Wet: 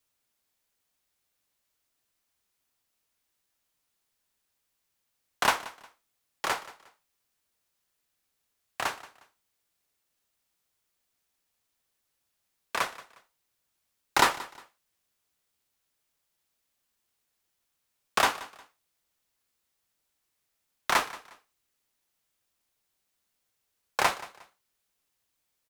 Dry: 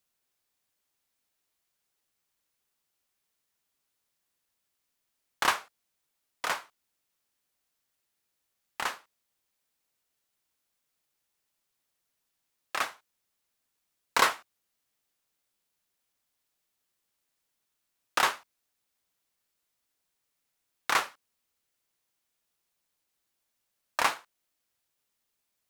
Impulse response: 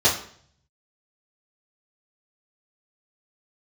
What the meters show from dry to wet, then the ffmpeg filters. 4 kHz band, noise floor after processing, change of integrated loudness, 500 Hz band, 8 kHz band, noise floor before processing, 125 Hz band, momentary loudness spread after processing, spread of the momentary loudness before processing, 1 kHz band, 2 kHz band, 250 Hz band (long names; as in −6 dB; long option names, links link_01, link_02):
+1.5 dB, −80 dBFS, +1.0 dB, +3.5 dB, +1.5 dB, −81 dBFS, +7.5 dB, 20 LU, 17 LU, +2.0 dB, +0.5 dB, +5.0 dB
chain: -filter_complex "[0:a]afreqshift=-120,asplit=2[link_01][link_02];[link_02]aecho=0:1:179|358:0.119|0.0345[link_03];[link_01][link_03]amix=inputs=2:normalize=0,volume=1.5dB"